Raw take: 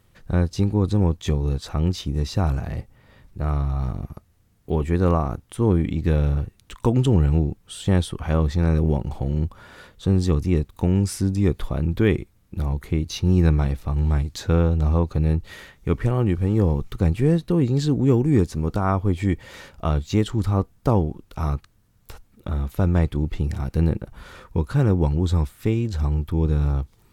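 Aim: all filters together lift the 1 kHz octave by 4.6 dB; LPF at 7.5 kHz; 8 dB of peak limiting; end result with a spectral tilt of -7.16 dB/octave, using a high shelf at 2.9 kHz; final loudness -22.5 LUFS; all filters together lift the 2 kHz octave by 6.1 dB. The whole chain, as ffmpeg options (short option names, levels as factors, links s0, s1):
-af "lowpass=7500,equalizer=f=1000:t=o:g=4.5,equalizer=f=2000:t=o:g=9,highshelf=f=2900:g=-7.5,volume=1.26,alimiter=limit=0.335:level=0:latency=1"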